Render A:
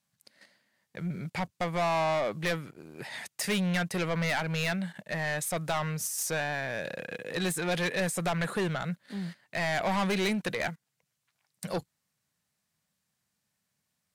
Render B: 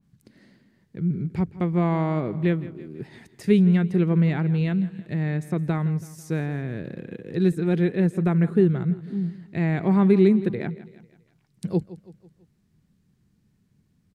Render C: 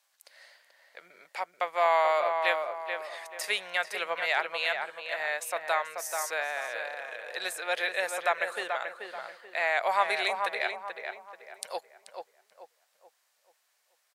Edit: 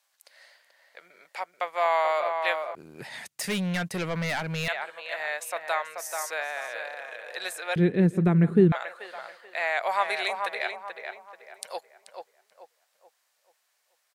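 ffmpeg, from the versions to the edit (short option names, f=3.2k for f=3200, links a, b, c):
-filter_complex "[2:a]asplit=3[a][b][c];[a]atrim=end=2.752[d];[0:a]atrim=start=2.748:end=4.682[e];[b]atrim=start=4.678:end=7.762[f];[1:a]atrim=start=7.758:end=8.722[g];[c]atrim=start=8.718[h];[d][e]acrossfade=d=0.004:c1=hsin:c2=hsin[i];[i][f]acrossfade=d=0.004:c1=hsin:c2=hsin[j];[j][g]acrossfade=d=0.004:c1=hsin:c2=hsin[k];[k][h]acrossfade=d=0.004:c1=hsin:c2=hsin"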